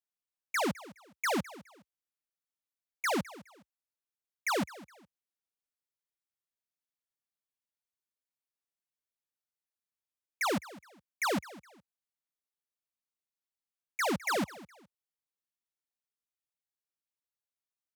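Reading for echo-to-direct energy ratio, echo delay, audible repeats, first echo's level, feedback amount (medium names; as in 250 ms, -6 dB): -18.0 dB, 208 ms, 2, -18.5 dB, 29%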